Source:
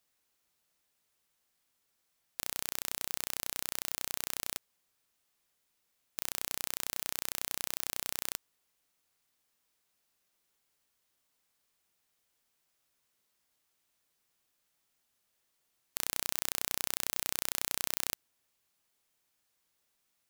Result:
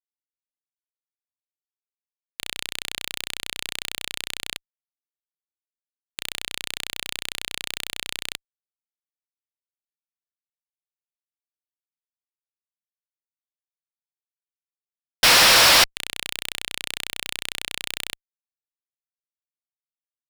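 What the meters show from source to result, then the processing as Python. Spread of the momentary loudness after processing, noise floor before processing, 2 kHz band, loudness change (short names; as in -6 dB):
21 LU, -79 dBFS, +19.5 dB, +13.5 dB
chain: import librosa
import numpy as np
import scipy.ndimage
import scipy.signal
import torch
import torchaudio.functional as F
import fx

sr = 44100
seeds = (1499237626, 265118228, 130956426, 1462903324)

y = fx.weighting(x, sr, curve='D')
y = fx.spec_paint(y, sr, seeds[0], shape='noise', start_s=15.23, length_s=0.61, low_hz=460.0, high_hz=5800.0, level_db=-16.0)
y = fx.fuzz(y, sr, gain_db=35.0, gate_db=-39.0)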